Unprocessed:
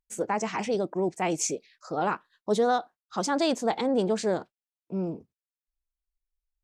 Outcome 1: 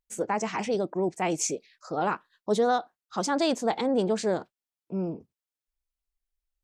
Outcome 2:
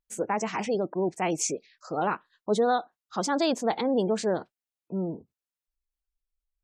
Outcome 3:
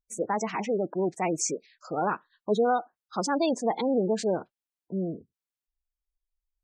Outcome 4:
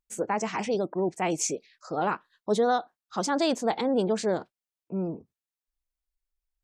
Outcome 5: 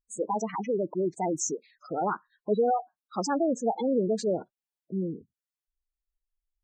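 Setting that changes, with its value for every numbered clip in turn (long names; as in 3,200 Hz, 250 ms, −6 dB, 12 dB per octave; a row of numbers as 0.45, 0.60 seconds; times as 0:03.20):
gate on every frequency bin, under each frame's peak: −60, −35, −20, −45, −10 decibels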